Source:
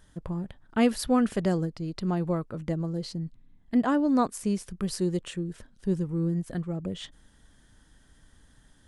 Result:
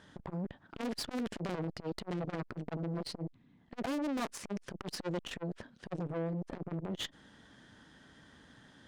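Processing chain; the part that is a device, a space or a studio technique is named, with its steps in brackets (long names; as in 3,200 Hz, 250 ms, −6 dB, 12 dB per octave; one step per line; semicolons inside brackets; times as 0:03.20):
valve radio (band-pass filter 150–4,200 Hz; tube saturation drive 41 dB, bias 0.75; saturating transformer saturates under 390 Hz)
level +10.5 dB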